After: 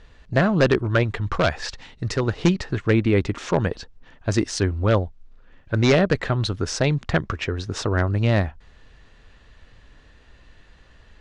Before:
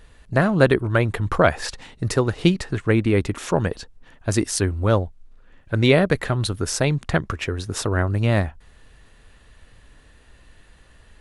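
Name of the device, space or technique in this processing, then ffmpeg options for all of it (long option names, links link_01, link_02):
synthesiser wavefolder: -filter_complex "[0:a]aeval=exprs='0.376*(abs(mod(val(0)/0.376+3,4)-2)-1)':channel_layout=same,lowpass=frequency=6400:width=0.5412,lowpass=frequency=6400:width=1.3066,asettb=1/sr,asplit=3[link_01][link_02][link_03];[link_01]atrim=end=1.034[link_04];[link_02]atrim=start=1.03:end=2.23,asetpts=PTS-STARTPTS,afade=type=in:duration=0.004:curve=qsin,afade=type=out:start_time=1.196:duration=0.004:curve=qsin,equalizer=frequency=380:width=0.33:gain=-4[link_05];[link_03]atrim=start=2.226[link_06];[link_04][link_05]acrossfade=duration=0.004:curve1=hsin:curve2=qsin[link_07];[link_07][link_06]acrossfade=duration=0.004:curve1=qsin:curve2=hsin"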